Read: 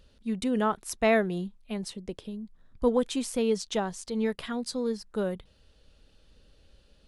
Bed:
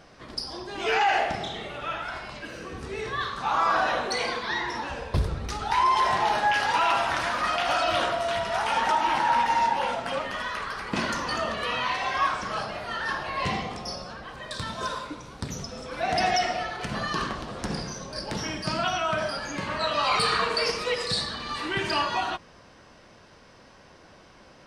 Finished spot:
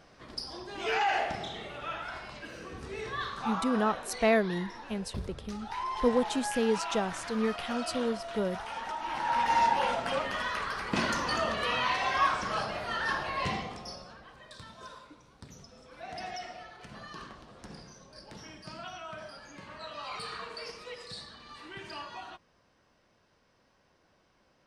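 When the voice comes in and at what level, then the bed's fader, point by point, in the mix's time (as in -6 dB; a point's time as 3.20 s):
3.20 s, -1.5 dB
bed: 3.44 s -5.5 dB
3.65 s -13.5 dB
8.98 s -13.5 dB
9.57 s -1.5 dB
13.19 s -1.5 dB
14.73 s -16 dB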